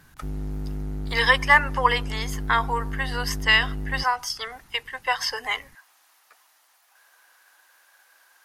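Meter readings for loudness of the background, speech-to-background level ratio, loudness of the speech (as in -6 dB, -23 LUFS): -33.5 LUFS, 10.5 dB, -23.0 LUFS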